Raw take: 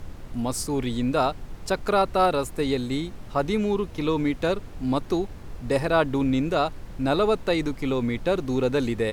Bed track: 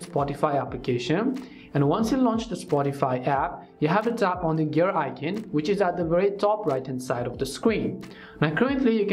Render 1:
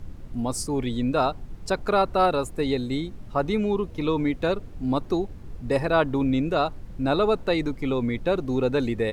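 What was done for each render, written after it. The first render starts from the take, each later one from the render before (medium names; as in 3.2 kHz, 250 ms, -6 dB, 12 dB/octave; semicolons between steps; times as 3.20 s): noise reduction 8 dB, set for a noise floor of -40 dBFS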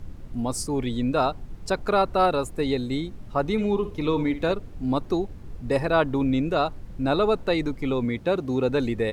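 3.52–4.53 s: flutter echo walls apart 10.1 m, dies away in 0.3 s; 8.05–8.69 s: high-pass 72 Hz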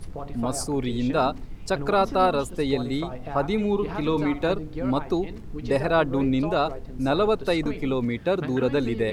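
add bed track -11.5 dB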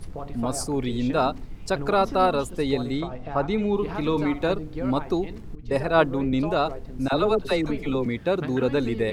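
2.92–3.74 s: distance through air 60 m; 5.55–6.33 s: three bands expanded up and down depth 100%; 7.08–8.06 s: phase dispersion lows, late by 45 ms, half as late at 750 Hz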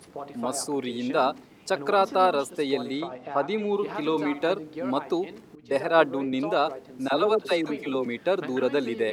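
high-pass 290 Hz 12 dB/octave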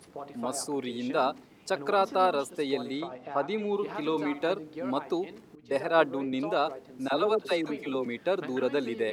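trim -3.5 dB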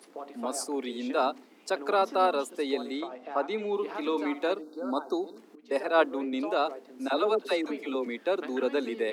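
steep high-pass 220 Hz 48 dB/octave; 4.62–5.38 s: time-frequency box 1.6–3.6 kHz -28 dB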